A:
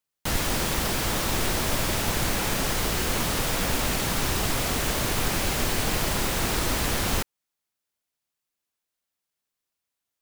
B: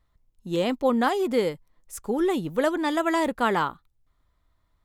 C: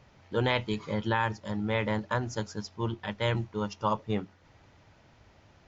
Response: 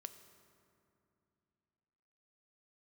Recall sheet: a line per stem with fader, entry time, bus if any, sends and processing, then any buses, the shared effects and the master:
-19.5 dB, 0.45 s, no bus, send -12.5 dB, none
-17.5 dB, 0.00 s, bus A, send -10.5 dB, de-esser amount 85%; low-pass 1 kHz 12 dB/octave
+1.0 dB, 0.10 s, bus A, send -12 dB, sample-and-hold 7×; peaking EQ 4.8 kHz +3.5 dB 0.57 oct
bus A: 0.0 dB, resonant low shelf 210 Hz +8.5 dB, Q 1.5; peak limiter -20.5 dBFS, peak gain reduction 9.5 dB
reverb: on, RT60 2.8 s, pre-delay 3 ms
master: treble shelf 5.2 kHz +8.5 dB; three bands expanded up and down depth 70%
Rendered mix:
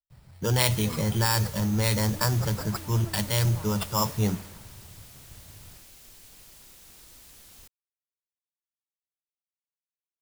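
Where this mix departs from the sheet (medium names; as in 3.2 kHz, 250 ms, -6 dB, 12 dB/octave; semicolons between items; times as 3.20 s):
stem A: send off; stem C +1.0 dB -> +8.5 dB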